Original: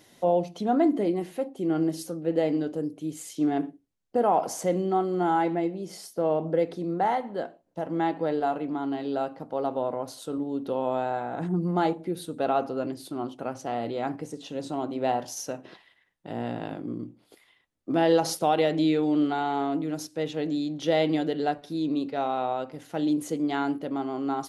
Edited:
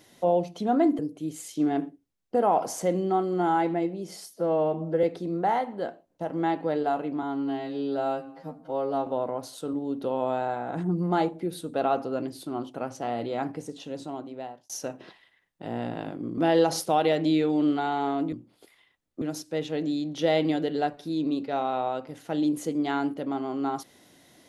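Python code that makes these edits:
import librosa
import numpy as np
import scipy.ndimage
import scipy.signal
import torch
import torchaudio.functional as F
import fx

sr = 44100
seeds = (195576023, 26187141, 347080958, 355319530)

y = fx.edit(x, sr, fx.cut(start_s=0.99, length_s=1.81),
    fx.stretch_span(start_s=6.11, length_s=0.49, factor=1.5),
    fx.stretch_span(start_s=8.79, length_s=0.92, factor=2.0),
    fx.fade_out_span(start_s=14.33, length_s=1.01),
    fx.move(start_s=17.02, length_s=0.89, to_s=19.86), tone=tone)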